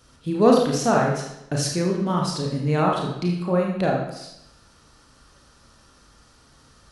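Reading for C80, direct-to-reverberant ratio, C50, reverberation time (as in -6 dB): 5.0 dB, -1.5 dB, 2.5 dB, 0.85 s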